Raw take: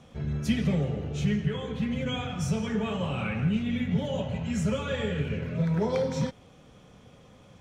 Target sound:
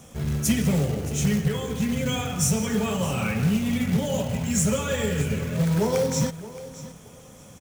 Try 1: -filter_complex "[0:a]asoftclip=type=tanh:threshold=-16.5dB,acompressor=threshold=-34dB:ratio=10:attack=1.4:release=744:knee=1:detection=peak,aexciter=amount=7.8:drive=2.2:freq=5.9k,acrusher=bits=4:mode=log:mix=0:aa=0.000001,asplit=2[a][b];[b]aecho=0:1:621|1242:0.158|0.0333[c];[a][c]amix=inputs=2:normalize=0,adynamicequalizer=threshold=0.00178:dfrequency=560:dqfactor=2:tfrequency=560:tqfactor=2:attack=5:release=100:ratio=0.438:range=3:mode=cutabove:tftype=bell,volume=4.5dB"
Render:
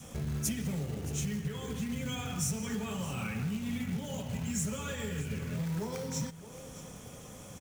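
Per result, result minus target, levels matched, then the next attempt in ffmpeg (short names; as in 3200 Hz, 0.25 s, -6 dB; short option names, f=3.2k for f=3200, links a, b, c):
compressor: peak gain reduction +14 dB; 500 Hz band -3.5 dB
-filter_complex "[0:a]asoftclip=type=tanh:threshold=-16.5dB,aexciter=amount=7.8:drive=2.2:freq=5.9k,acrusher=bits=4:mode=log:mix=0:aa=0.000001,asplit=2[a][b];[b]aecho=0:1:621|1242:0.158|0.0333[c];[a][c]amix=inputs=2:normalize=0,adynamicequalizer=threshold=0.00178:dfrequency=560:dqfactor=2:tfrequency=560:tqfactor=2:attack=5:release=100:ratio=0.438:range=3:mode=cutabove:tftype=bell,volume=4.5dB"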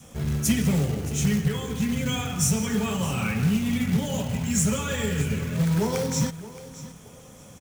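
500 Hz band -3.5 dB
-filter_complex "[0:a]asoftclip=type=tanh:threshold=-16.5dB,aexciter=amount=7.8:drive=2.2:freq=5.9k,acrusher=bits=4:mode=log:mix=0:aa=0.000001,asplit=2[a][b];[b]aecho=0:1:621|1242:0.158|0.0333[c];[a][c]amix=inputs=2:normalize=0,volume=4.5dB"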